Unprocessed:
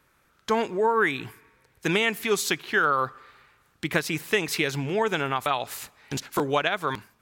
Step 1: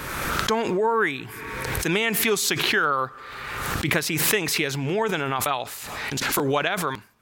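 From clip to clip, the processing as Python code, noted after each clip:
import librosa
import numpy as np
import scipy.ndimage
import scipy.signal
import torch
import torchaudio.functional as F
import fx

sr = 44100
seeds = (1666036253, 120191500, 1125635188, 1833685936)

y = fx.pre_swell(x, sr, db_per_s=28.0)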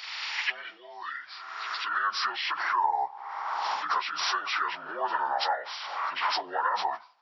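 y = fx.partial_stretch(x, sr, pct=75)
y = fx.filter_sweep_highpass(y, sr, from_hz=2200.0, to_hz=920.0, start_s=1.02, end_s=2.56, q=2.2)
y = fx.rider(y, sr, range_db=3, speed_s=0.5)
y = y * librosa.db_to_amplitude(-5.5)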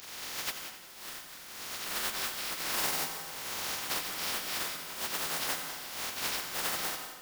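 y = fx.spec_flatten(x, sr, power=0.1)
y = fx.echo_feedback(y, sr, ms=89, feedback_pct=56, wet_db=-11.5)
y = fx.rev_plate(y, sr, seeds[0], rt60_s=1.0, hf_ratio=0.75, predelay_ms=120, drr_db=8.0)
y = y * librosa.db_to_amplitude(-6.0)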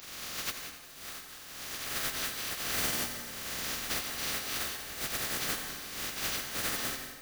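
y = fx.band_invert(x, sr, width_hz=1000)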